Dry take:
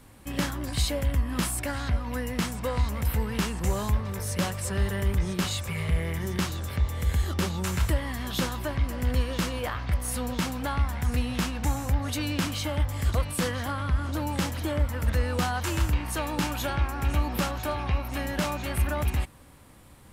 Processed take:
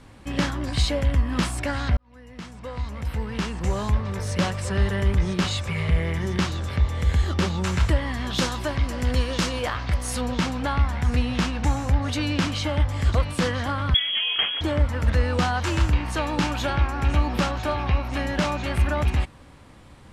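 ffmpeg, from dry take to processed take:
-filter_complex "[0:a]asettb=1/sr,asplit=3[s0][s1][s2];[s0]atrim=end=8.384[s3];[s1]atrim=start=8.38:end=10.21,asetpts=PTS-STARTPTS,afade=t=in:d=0.004:c=qsin,afade=t=out:st=1.826:d=0.004:c=qsin,bass=f=250:g=-2,treble=f=4000:g=7[s4];[s2]atrim=start=10.206[s5];[s3][s4]acrossfade=d=0.004:c1=hsin:c2=qsin[s6];[s6][s5]acrossfade=d=0.004:c1=qsin:c2=hsin,asettb=1/sr,asplit=3[s7][s8][s9];[s7]atrim=end=13.944[s10];[s8]atrim=start=13.94:end=14.61,asetpts=PTS-STARTPTS,afade=t=in:d=0.004:c=qsin,afade=t=out:st=0.666:d=0.004:c=qsin,lowpass=f=2900:t=q:w=0.5098,lowpass=f=2900:t=q:w=0.6013,lowpass=f=2900:t=q:w=0.9,lowpass=f=2900:t=q:w=2.563,afreqshift=-3400[s11];[s9]atrim=start=14.606[s12];[s10][s11]acrossfade=d=0.004:c1=hsin:c2=qsin[s13];[s13][s12]acrossfade=d=0.004:c1=qsin:c2=hsin,asplit=2[s14][s15];[s14]atrim=end=1.97,asetpts=PTS-STARTPTS,afade=t=out:st=1.966:d=0.004:c=hsin[s16];[s15]atrim=start=1.97,asetpts=PTS-STARTPTS,afade=t=in:d=2.3[s17];[s16][s17]concat=n=2:v=0:a=1,lowpass=5800,volume=1.68"

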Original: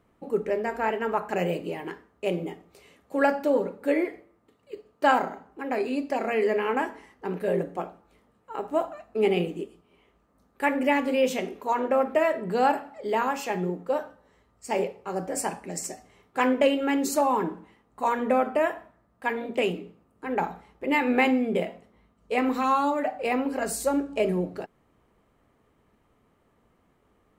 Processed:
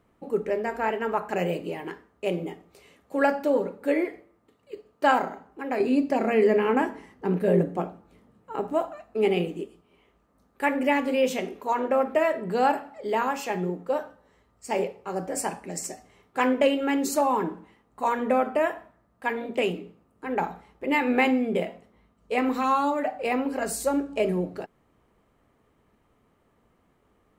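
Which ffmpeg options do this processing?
-filter_complex "[0:a]asettb=1/sr,asplit=3[s0][s1][s2];[s0]atrim=end=5.804[s3];[s1]atrim=start=5.8:end=8.73,asetpts=PTS-STARTPTS,afade=t=in:d=0.004:c=qsin,afade=t=out:st=2.926:d=0.004:c=qsin,equalizer=f=160:w=0.5:g=9[s4];[s2]atrim=start=8.726[s5];[s3][s4]acrossfade=d=0.004:c1=hsin:c2=qsin[s6];[s6][s5]acrossfade=d=0.004:c1=qsin:c2=hsin"

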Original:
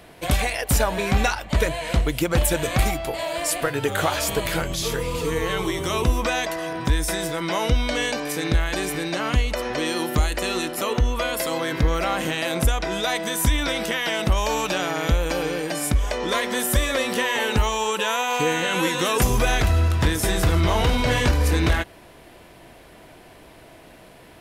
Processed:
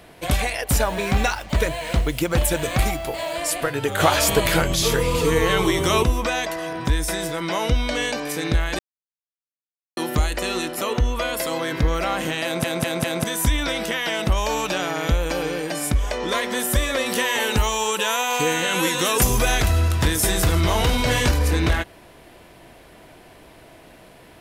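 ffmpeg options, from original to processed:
-filter_complex "[0:a]asettb=1/sr,asplit=3[s0][s1][s2];[s0]atrim=end=0.834[s3];[s1]atrim=start=0.83:end=3.37,asetpts=PTS-STARTPTS,afade=t=in:d=0.004:c=qsin,afade=t=out:st=2.536:d=0.004:c=qsin,acrusher=bits=6:mix=0:aa=0.5[s4];[s2]atrim=start=3.366[s5];[s3][s4]acrossfade=d=0.004:c1=hsin:c2=qsin[s6];[s6][s5]acrossfade=d=0.004:c1=qsin:c2=hsin,asettb=1/sr,asplit=3[s7][s8][s9];[s7]atrim=end=17.064[s10];[s8]atrim=start=17.06:end=21.39,asetpts=PTS-STARTPTS,afade=t=in:d=0.004:c=qsin,afade=t=out:st=4.326:d=0.004:c=qsin,highshelf=f=5100:g=8[s11];[s9]atrim=start=21.386[s12];[s10][s11]acrossfade=d=0.004:c1=hsin:c2=qsin[s13];[s13][s12]acrossfade=d=0.004:c1=qsin:c2=hsin,asplit=9[s14][s15][s16][s17][s18][s19][s20][s21][s22];[s14]atrim=end=4.002[s23];[s15]atrim=start=3.998:end=6.032,asetpts=PTS-STARTPTS,volume=1.88[s24];[s16]atrim=start=6.028:end=8.79,asetpts=PTS-STARTPTS,afade=t=out:st=2.758:d=0.004:c=hsin[s25];[s17]atrim=start=8.79:end=9.97,asetpts=PTS-STARTPTS,volume=0[s26];[s18]atrim=start=9.97:end=12.642,asetpts=PTS-STARTPTS,afade=t=in:d=0.004:c=hsin[s27];[s19]atrim=start=12.438:end=12.642[s28];[s20]atrim=start=12.438:end=12.642[s29];[s21]atrim=start=12.438:end=12.642[s30];[s22]atrim=start=13.238[s31];[s23][s24]acrossfade=d=0.004:c1=hsin:c2=hsin[s32];[s25][s26][s27]concat=n=3:v=0:a=1[s33];[s32][s33]acrossfade=d=0.004:c1=hsin:c2=hsin[s34];[s34][s28]acrossfade=d=0.004:c1=hsin:c2=hsin[s35];[s35][s29]acrossfade=d=0.004:c1=hsin:c2=hsin[s36];[s36][s30]acrossfade=d=0.004:c1=hsin:c2=hsin[s37];[s37][s31]acrossfade=d=0.004:c1=hsin:c2=hsin"

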